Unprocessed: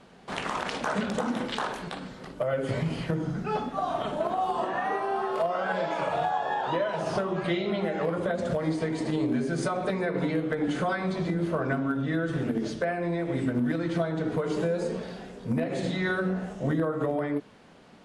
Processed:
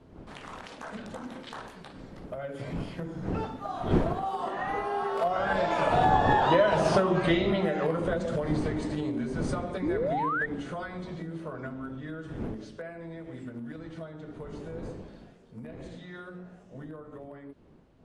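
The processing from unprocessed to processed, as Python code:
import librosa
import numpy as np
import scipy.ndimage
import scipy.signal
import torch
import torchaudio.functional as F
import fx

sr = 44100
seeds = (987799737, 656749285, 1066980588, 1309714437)

y = fx.dmg_wind(x, sr, seeds[0], corner_hz=310.0, level_db=-33.0)
y = fx.doppler_pass(y, sr, speed_mps=12, closest_m=9.1, pass_at_s=6.59)
y = fx.spec_paint(y, sr, seeds[1], shape='rise', start_s=9.82, length_s=0.64, low_hz=270.0, high_hz=1900.0, level_db=-35.0)
y = y * librosa.db_to_amplitude(6.0)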